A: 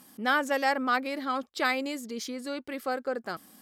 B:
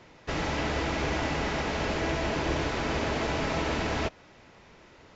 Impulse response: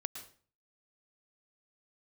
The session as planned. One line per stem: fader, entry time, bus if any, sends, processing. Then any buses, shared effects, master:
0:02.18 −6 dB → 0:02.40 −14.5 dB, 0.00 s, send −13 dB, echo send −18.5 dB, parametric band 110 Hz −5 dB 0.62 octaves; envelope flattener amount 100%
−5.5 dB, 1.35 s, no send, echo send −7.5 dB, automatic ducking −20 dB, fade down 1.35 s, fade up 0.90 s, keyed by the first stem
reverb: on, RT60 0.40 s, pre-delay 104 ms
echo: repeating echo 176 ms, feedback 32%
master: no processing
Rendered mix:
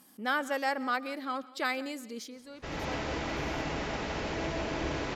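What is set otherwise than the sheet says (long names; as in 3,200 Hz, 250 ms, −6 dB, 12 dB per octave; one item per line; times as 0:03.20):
stem A: missing envelope flattener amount 100%
stem B: entry 1.35 s → 2.35 s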